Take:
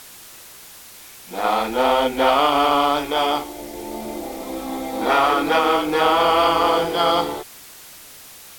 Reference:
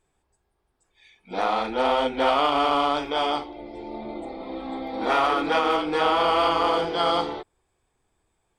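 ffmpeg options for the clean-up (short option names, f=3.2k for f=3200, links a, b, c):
-af "afwtdn=0.0089,asetnsamples=n=441:p=0,asendcmd='1.44 volume volume -4.5dB',volume=0dB"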